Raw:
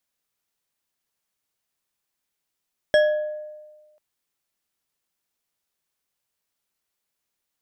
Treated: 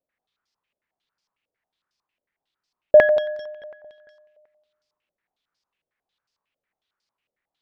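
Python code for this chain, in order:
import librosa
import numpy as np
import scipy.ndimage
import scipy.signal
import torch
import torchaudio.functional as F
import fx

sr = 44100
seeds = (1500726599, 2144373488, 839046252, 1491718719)

y = fx.echo_feedback(x, sr, ms=226, feedback_pct=55, wet_db=-16.0)
y = fx.filter_held_lowpass(y, sr, hz=11.0, low_hz=560.0, high_hz=5000.0)
y = y * librosa.db_to_amplitude(-1.0)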